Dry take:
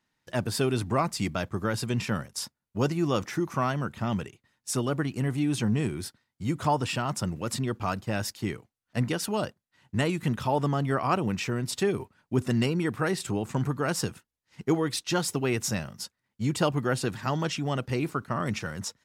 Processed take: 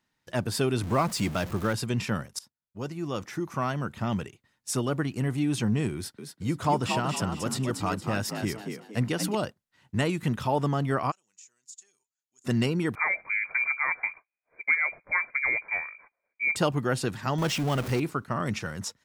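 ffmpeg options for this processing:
ffmpeg -i in.wav -filter_complex "[0:a]asettb=1/sr,asplit=3[link_01][link_02][link_03];[link_01]atrim=end=0.834[link_04];[link_02]atrim=start=0.83:end=1.73,asetpts=PTS-STARTPTS,afade=type=in:duration=0.004:curve=qsin,afade=type=out:start_time=0.896:duration=0.004:curve=qsin,aeval=exprs='val(0)+0.5*0.0178*sgn(val(0))':channel_layout=same[link_05];[link_03]atrim=start=1.726[link_06];[link_04][link_05]acrossfade=duration=0.004:curve1=hsin:curve2=qsin[link_07];[link_07][link_06]acrossfade=duration=0.004:curve1=qsin:curve2=hsin,asettb=1/sr,asplit=3[link_08][link_09][link_10];[link_08]atrim=end=5.954[link_11];[link_09]atrim=start=5.95:end=9.35,asetpts=PTS-STARTPTS,afade=type=in:duration=0.004:curve=qsin,afade=type=out:start_time=3.396:duration=0.004:curve=qsin,asplit=5[link_12][link_13][link_14][link_15][link_16];[link_13]adelay=232,afreqshift=52,volume=-6dB[link_17];[link_14]adelay=464,afreqshift=104,volume=-15.4dB[link_18];[link_15]adelay=696,afreqshift=156,volume=-24.7dB[link_19];[link_16]adelay=928,afreqshift=208,volume=-34.1dB[link_20];[link_12][link_17][link_18][link_19][link_20]amix=inputs=5:normalize=0,atrim=end_sample=149940[link_21];[link_10]atrim=start=9.346[link_22];[link_11][link_21]acrossfade=duration=0.004:curve1=hsin:curve2=qsin[link_23];[link_23][link_22]acrossfade=duration=0.004:curve1=qsin:curve2=hsin,asplit=3[link_24][link_25][link_26];[link_24]afade=type=out:start_time=11.1:duration=0.02[link_27];[link_25]bandpass=frequency=6900:width_type=q:width=14,afade=type=in:start_time=11.1:duration=0.02,afade=type=out:start_time=12.44:duration=0.02[link_28];[link_26]afade=type=in:start_time=12.44:duration=0.02[link_29];[link_27][link_28][link_29]amix=inputs=3:normalize=0,asettb=1/sr,asplit=3[link_30][link_31][link_32];[link_30]atrim=end=12.954[link_33];[link_31]atrim=start=12.95:end=16.56,asetpts=PTS-STARTPTS,afade=type=in:duration=0.004:curve=qsin,afade=type=out:start_time=3.606:duration=0.004:curve=qsin,lowpass=frequency=2100:width_type=q:width=0.5098,lowpass=frequency=2100:width_type=q:width=0.6013,lowpass=frequency=2100:width_type=q:width=0.9,lowpass=frequency=2100:width_type=q:width=2.563,afreqshift=-2500[link_34];[link_32]atrim=start=16.556[link_35];[link_33][link_34]acrossfade=duration=0.004:curve1=hsin:curve2=qsin[link_36];[link_36][link_35]acrossfade=duration=0.004:curve1=qsin:curve2=hsin,asettb=1/sr,asplit=3[link_37][link_38][link_39];[link_37]atrim=end=17.384[link_40];[link_38]atrim=start=17.38:end=18,asetpts=PTS-STARTPTS,afade=type=in:duration=0.004:curve=qsin,afade=type=out:start_time=0.616:duration=0.004:curve=qsin,aeval=exprs='val(0)+0.5*0.0282*sgn(val(0))':channel_layout=same[link_41];[link_39]atrim=start=17.996[link_42];[link_40][link_41]acrossfade=duration=0.004:curve1=hsin:curve2=qsin[link_43];[link_43][link_42]acrossfade=duration=0.004:curve1=qsin:curve2=hsin,asplit=2[link_44][link_45];[link_44]atrim=end=2.39,asetpts=PTS-STARTPTS,afade=type=out:start_time=2.386:duration=0.004:curve=hsin:silence=0.1[link_46];[link_45]atrim=start=2.39,asetpts=PTS-STARTPTS,afade=type=in:duration=1.59:silence=0.1[link_47];[link_46][link_47]concat=n=2:v=0:a=1" out.wav

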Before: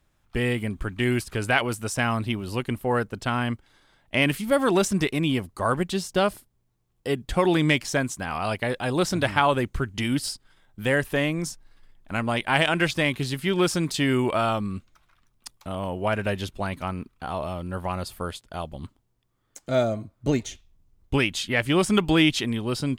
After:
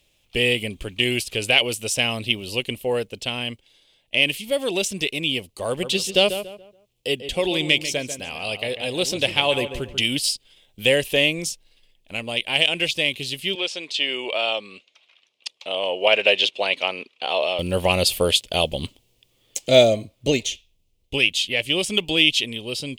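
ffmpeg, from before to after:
ffmpeg -i in.wav -filter_complex "[0:a]asettb=1/sr,asplit=3[link_01][link_02][link_03];[link_01]atrim=end=5.684[link_04];[link_02]atrim=start=5.68:end=10.03,asetpts=PTS-STARTPTS,afade=type=in:duration=0.004:curve=qsin,afade=type=out:start_time=4.346:duration=0.004:curve=qsin,asplit=2[link_05][link_06];[link_06]adelay=142,lowpass=frequency=2300:poles=1,volume=-9.5dB,asplit=2[link_07][link_08];[link_08]adelay=142,lowpass=frequency=2300:poles=1,volume=0.34,asplit=2[link_09][link_10];[link_10]adelay=142,lowpass=frequency=2300:poles=1,volume=0.34,asplit=2[link_11][link_12];[link_12]adelay=142,lowpass=frequency=2300:poles=1,volume=0.34[link_13];[link_05][link_07][link_09][link_11][link_13]amix=inputs=5:normalize=0,atrim=end_sample=191835[link_14];[link_03]atrim=start=10.026[link_15];[link_04][link_14]acrossfade=duration=0.004:curve1=hsin:curve2=qsin[link_16];[link_16][link_15]acrossfade=duration=0.004:curve1=qsin:curve2=hsin,asettb=1/sr,asplit=3[link_17][link_18][link_19];[link_17]atrim=end=13.554[link_20];[link_18]atrim=start=13.55:end=17.59,asetpts=PTS-STARTPTS,afade=type=in:duration=0.004:curve=qsin,afade=type=out:start_time=4.036:duration=0.004:curve=qsin,highpass=500,lowpass=4200[link_21];[link_19]atrim=start=17.586[link_22];[link_20][link_21]acrossfade=duration=0.004:curve1=hsin:curve2=qsin[link_23];[link_23][link_22]acrossfade=duration=0.004:curve1=qsin:curve2=hsin,highshelf=frequency=2000:width_type=q:width=3:gain=11.5,dynaudnorm=framelen=350:gausssize=7:maxgain=11.5dB,equalizer=frequency=510:width_type=o:width=0.92:gain=11,volume=-2dB" out.wav

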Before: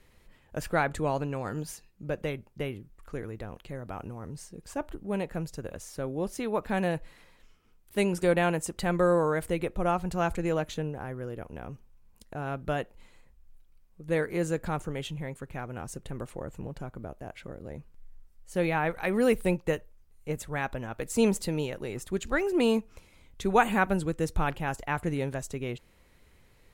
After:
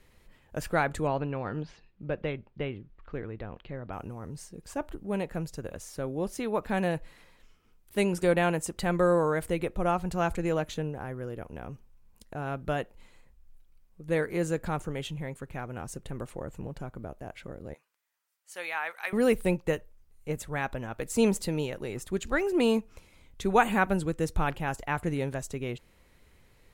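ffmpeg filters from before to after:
ffmpeg -i in.wav -filter_complex "[0:a]asettb=1/sr,asplit=3[link_01][link_02][link_03];[link_01]atrim=end=1.074[link_04];[link_02]atrim=start=1.07:end=3.93,asetpts=PTS-STARTPTS,afade=type=in:duration=0.004:curve=qsin,afade=type=out:start_time=2.856:duration=0.004:curve=qsin,lowpass=frequency=3900:width=0.5412,lowpass=frequency=3900:width=1.3066[link_05];[link_03]atrim=start=3.926[link_06];[link_04][link_05]acrossfade=duration=0.004:curve1=hsin:curve2=qsin[link_07];[link_07][link_06]acrossfade=duration=0.004:curve1=qsin:curve2=hsin,asettb=1/sr,asplit=3[link_08][link_09][link_10];[link_08]atrim=end=17.744[link_11];[link_09]atrim=start=17.74:end=19.13,asetpts=PTS-STARTPTS,afade=type=in:duration=0.004:curve=qsin,afade=type=out:start_time=1.386:duration=0.004:curve=qsin,highpass=1100[link_12];[link_10]atrim=start=19.126[link_13];[link_11][link_12]acrossfade=duration=0.004:curve1=hsin:curve2=qsin[link_14];[link_14][link_13]acrossfade=duration=0.004:curve1=qsin:curve2=hsin" out.wav

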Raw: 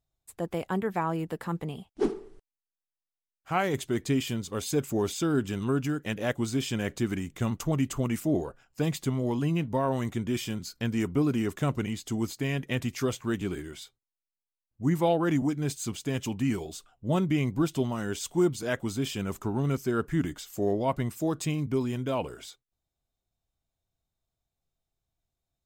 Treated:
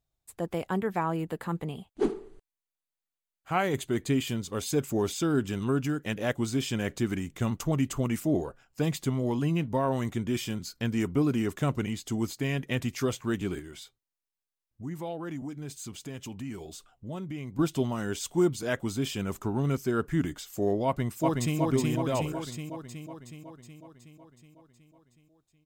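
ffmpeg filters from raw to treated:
ffmpeg -i in.wav -filter_complex "[0:a]asettb=1/sr,asplit=3[link_01][link_02][link_03];[link_01]atrim=end=1.064[link_04];[link_02]atrim=start=1.06:end=4.27,asetpts=PTS-STARTPTS,afade=type=in:duration=0.004:curve=qsin,afade=type=out:start_time=3.206:duration=0.004:curve=qsin,bandreject=frequency=5400:width=5.6[link_05];[link_03]atrim=start=4.266[link_06];[link_04][link_05]acrossfade=duration=0.004:curve1=hsin:curve2=qsin[link_07];[link_07][link_06]acrossfade=duration=0.004:curve1=qsin:curve2=hsin,asettb=1/sr,asplit=3[link_08][link_09][link_10];[link_08]atrim=end=13.594[link_11];[link_09]atrim=start=13.59:end=17.59,asetpts=PTS-STARTPTS,afade=type=in:duration=0.004:curve=qsin,afade=type=out:start_time=3.996:duration=0.004:curve=qsin,acompressor=threshold=-42dB:ratio=2:attack=3.2:release=140:knee=1:detection=peak[link_12];[link_10]atrim=start=17.586[link_13];[link_11][link_12]acrossfade=duration=0.004:curve1=hsin:curve2=qsin[link_14];[link_14][link_13]acrossfade=duration=0.004:curve1=qsin:curve2=hsin,asplit=2[link_15][link_16];[link_16]afade=type=in:start_time=20.86:duration=0.01,afade=type=out:start_time=21.58:duration=0.01,aecho=0:1:370|740|1110|1480|1850|2220|2590|2960|3330|3700|4070:0.841395|0.546907|0.355489|0.231068|0.150194|0.0976263|0.0634571|0.0412471|0.0268106|0.0174269|0.0113275[link_17];[link_15][link_17]amix=inputs=2:normalize=0" out.wav

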